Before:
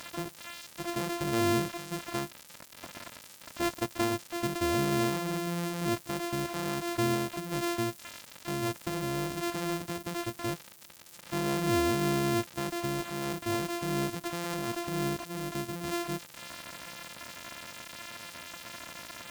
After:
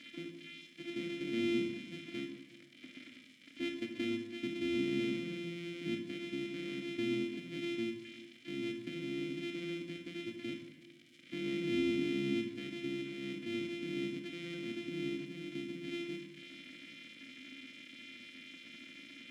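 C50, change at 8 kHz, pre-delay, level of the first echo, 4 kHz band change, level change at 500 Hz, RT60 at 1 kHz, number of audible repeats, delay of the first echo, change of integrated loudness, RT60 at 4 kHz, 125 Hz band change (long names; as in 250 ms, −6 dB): 6.0 dB, −20.0 dB, 22 ms, no echo audible, −6.0 dB, −7.0 dB, 1.1 s, no echo audible, no echo audible, −6.5 dB, 0.85 s, −12.5 dB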